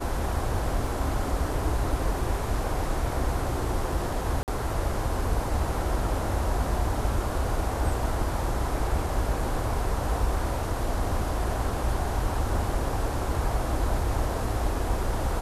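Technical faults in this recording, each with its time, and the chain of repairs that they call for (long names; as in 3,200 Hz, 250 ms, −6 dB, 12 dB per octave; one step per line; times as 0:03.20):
0:00.87: drop-out 2.4 ms
0:04.43–0:04.48: drop-out 48 ms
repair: repair the gap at 0:00.87, 2.4 ms
repair the gap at 0:04.43, 48 ms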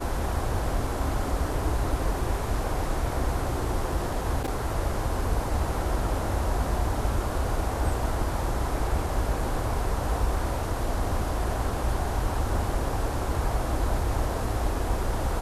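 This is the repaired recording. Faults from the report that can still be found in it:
none of them is left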